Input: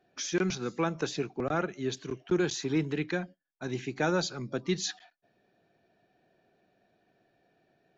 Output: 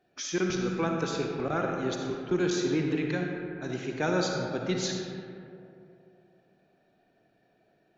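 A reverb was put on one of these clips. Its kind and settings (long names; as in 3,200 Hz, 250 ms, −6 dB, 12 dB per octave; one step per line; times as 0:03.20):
comb and all-pass reverb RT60 2.7 s, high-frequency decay 0.4×, pre-delay 15 ms, DRR 1 dB
level −1 dB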